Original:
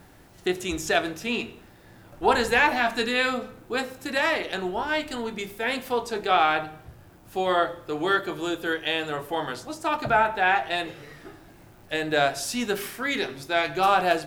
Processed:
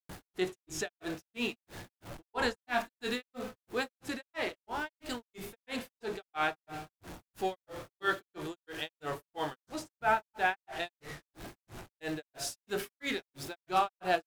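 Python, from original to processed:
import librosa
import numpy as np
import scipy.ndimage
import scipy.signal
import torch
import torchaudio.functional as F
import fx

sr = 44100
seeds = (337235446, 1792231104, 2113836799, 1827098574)

y = x + 0.5 * 10.0 ** (-33.5 / 20.0) * np.sign(x)
y = fx.granulator(y, sr, seeds[0], grain_ms=229.0, per_s=3.0, spray_ms=100.0, spread_st=0)
y = fx.wow_flutter(y, sr, seeds[1], rate_hz=2.1, depth_cents=19.0)
y = F.gain(torch.from_numpy(y), -6.0).numpy()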